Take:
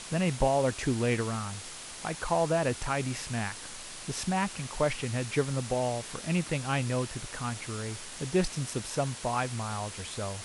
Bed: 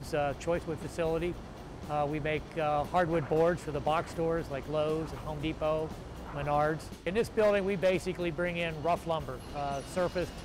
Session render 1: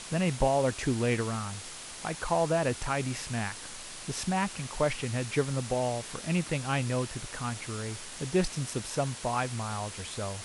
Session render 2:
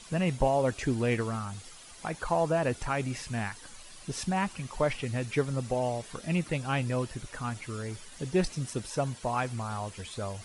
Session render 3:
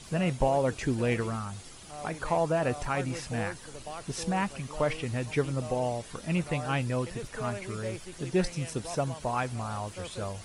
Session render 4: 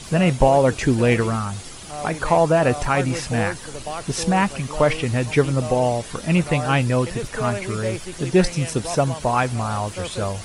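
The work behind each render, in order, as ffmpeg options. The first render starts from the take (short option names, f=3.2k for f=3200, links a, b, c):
-af anull
-af "afftdn=nr=11:nf=-43"
-filter_complex "[1:a]volume=-11.5dB[a];[0:a][a]amix=inputs=2:normalize=0"
-af "volume=10.5dB"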